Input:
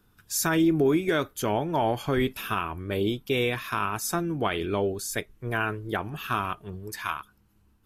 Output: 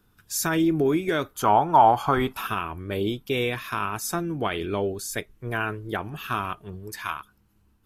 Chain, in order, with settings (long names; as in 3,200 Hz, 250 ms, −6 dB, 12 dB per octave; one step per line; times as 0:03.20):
0:01.34–0:02.47: flat-topped bell 1,000 Hz +12.5 dB 1.2 octaves